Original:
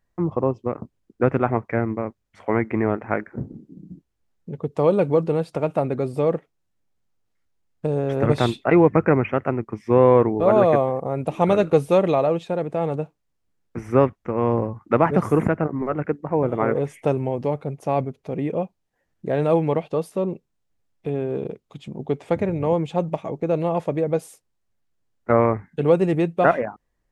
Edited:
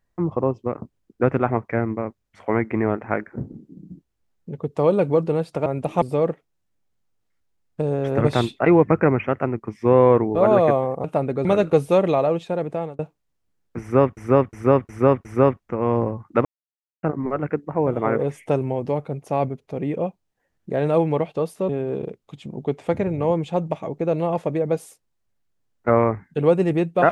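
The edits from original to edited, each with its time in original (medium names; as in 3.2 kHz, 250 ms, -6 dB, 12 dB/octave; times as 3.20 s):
5.66–6.07 s: swap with 11.09–11.45 s
12.72–12.99 s: fade out
13.81–14.17 s: loop, 5 plays
15.01–15.59 s: mute
20.25–21.11 s: delete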